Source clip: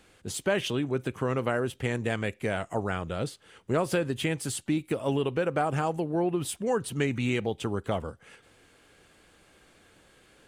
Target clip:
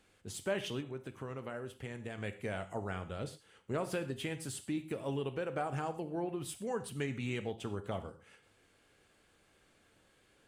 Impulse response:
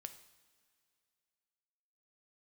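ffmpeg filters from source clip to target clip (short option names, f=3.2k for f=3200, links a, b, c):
-filter_complex "[0:a]asettb=1/sr,asplit=3[a][b][c];[a]atrim=end=0.804[d];[b]atrim=start=0.8:end=2.18,asetpts=PTS-STARTPTS,afade=t=in:d=0.004:c=qsin,afade=t=out:st=1.376:d=0.004:c=qsin,acompressor=threshold=-34dB:ratio=2[e];[c]atrim=start=2.176[f];[d][e]acrossfade=d=0.004:c1=hsin:c2=qsin[g];[g][f]acrossfade=d=0.004:c1=qsin:c2=hsin[h];[1:a]atrim=start_sample=2205,atrim=end_sample=6174[i];[h][i]afir=irnorm=-1:irlink=0,volume=-4dB"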